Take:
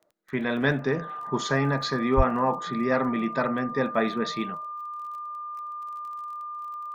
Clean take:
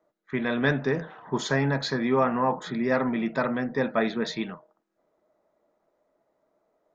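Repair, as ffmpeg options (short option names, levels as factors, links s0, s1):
-filter_complex "[0:a]adeclick=t=4,bandreject=f=1200:w=30,asplit=3[s0][s1][s2];[s0]afade=t=out:st=2.16:d=0.02[s3];[s1]highpass=f=140:w=0.5412,highpass=f=140:w=1.3066,afade=t=in:st=2.16:d=0.02,afade=t=out:st=2.28:d=0.02[s4];[s2]afade=t=in:st=2.28:d=0.02[s5];[s3][s4][s5]amix=inputs=3:normalize=0"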